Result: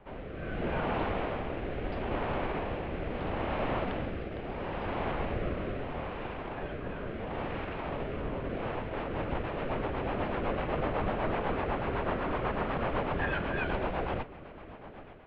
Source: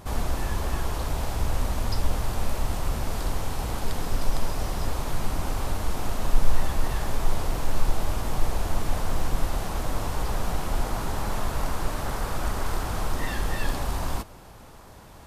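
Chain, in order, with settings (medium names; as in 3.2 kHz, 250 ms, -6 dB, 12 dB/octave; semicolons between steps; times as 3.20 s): level rider gain up to 10 dB; Chebyshev shaper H 5 -29 dB, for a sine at -1 dBFS; mistuned SSB -200 Hz 170–3000 Hz; rotary cabinet horn 0.75 Hz, later 8 Hz, at 8.48 s; trim -5 dB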